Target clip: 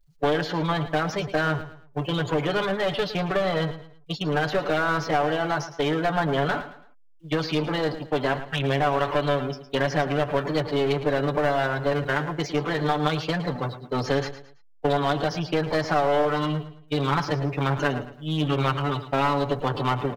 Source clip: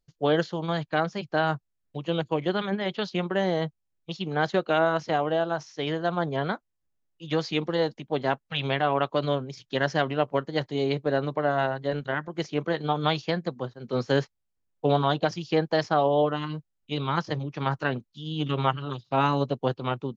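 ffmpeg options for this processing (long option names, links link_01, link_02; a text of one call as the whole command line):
ffmpeg -i in.wav -filter_complex "[0:a]aeval=exprs='val(0)+0.5*0.0473*sgn(val(0))':channel_layout=same,agate=range=-20dB:threshold=-29dB:ratio=16:detection=peak,afftdn=noise_reduction=28:noise_floor=-37,lowshelf=frequency=260:gain=-10,aecho=1:1:6.9:0.73,acrossover=split=1400|3100[link_01][link_02][link_03];[link_01]acompressor=threshold=-23dB:ratio=4[link_04];[link_02]acompressor=threshold=-36dB:ratio=4[link_05];[link_03]acompressor=threshold=-47dB:ratio=4[link_06];[link_04][link_05][link_06]amix=inputs=3:normalize=0,aeval=exprs='clip(val(0),-1,0.0422)':channel_layout=same,asplit=2[link_07][link_08];[link_08]aecho=0:1:110|220|330:0.224|0.0739|0.0244[link_09];[link_07][link_09]amix=inputs=2:normalize=0,volume=4dB" out.wav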